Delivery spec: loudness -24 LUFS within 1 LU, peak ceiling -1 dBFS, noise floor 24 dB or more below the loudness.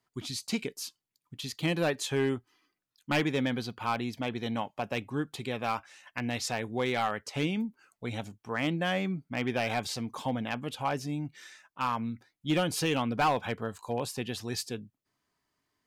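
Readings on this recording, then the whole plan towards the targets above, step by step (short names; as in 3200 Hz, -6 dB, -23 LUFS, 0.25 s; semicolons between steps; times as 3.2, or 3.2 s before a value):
clipped 0.3%; flat tops at -20.5 dBFS; loudness -32.5 LUFS; peak -20.5 dBFS; loudness target -24.0 LUFS
-> clip repair -20.5 dBFS; gain +8.5 dB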